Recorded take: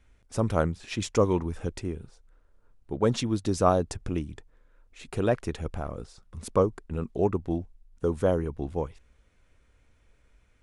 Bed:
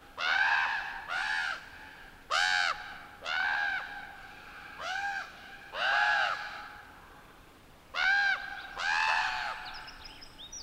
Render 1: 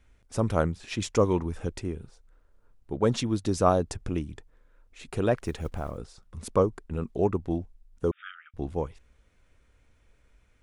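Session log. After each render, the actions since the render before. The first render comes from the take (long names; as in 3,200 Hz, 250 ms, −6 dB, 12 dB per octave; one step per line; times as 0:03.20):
0:05.37–0:05.98: one scale factor per block 7 bits
0:08.11–0:08.54: linear-phase brick-wall band-pass 1,200–3,700 Hz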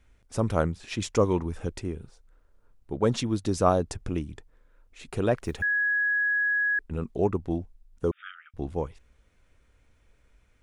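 0:05.62–0:06.79: beep over 1,670 Hz −22 dBFS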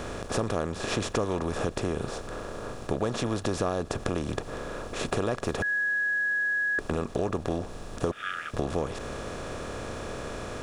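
compressor on every frequency bin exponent 0.4
downward compressor 5 to 1, threshold −25 dBFS, peak gain reduction 11.5 dB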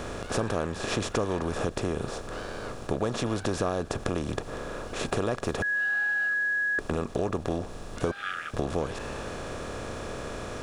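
mix in bed −18 dB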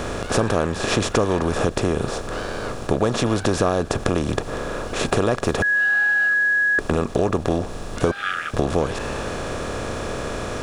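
level +8.5 dB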